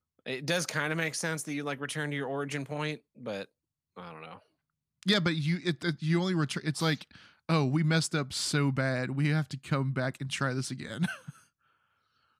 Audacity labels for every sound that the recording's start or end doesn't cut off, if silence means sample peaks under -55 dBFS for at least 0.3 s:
3.960000	4.420000	sound
5.030000	11.440000	sound